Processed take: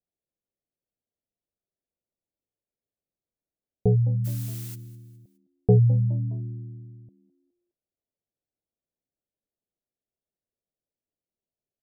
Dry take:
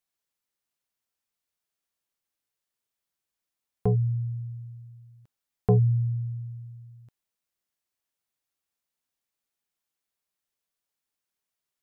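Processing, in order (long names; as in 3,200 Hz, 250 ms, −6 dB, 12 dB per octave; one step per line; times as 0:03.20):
Butterworth low-pass 660 Hz 36 dB per octave
0:04.24–0:04.74: background noise blue −45 dBFS
on a send: echo with shifted repeats 207 ms, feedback 40%, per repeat +78 Hz, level −19 dB
on the sum: level +3 dB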